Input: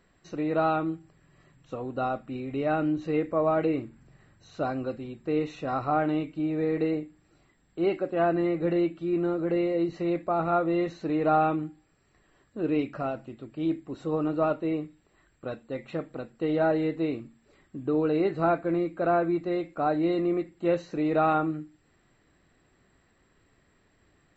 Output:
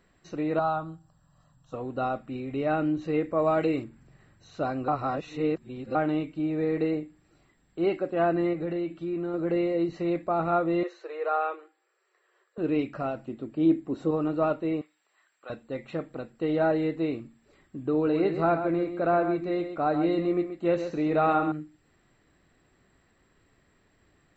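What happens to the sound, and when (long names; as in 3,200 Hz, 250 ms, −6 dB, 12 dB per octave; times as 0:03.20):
0:00.59–0:01.74: phaser with its sweep stopped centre 910 Hz, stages 4
0:03.38–0:03.84: high-shelf EQ 3,600 Hz +11 dB
0:04.88–0:05.95: reverse
0:08.53–0:09.34: downward compressor 2.5 to 1, threshold −29 dBFS
0:10.83–0:12.58: Chebyshev high-pass with heavy ripple 350 Hz, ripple 6 dB
0:13.28–0:14.11: drawn EQ curve 110 Hz 0 dB, 250 Hz +7 dB, 2,300 Hz −1 dB
0:14.81–0:15.50: high-pass filter 890 Hz
0:17.94–0:21.52: single-tap delay 131 ms −9 dB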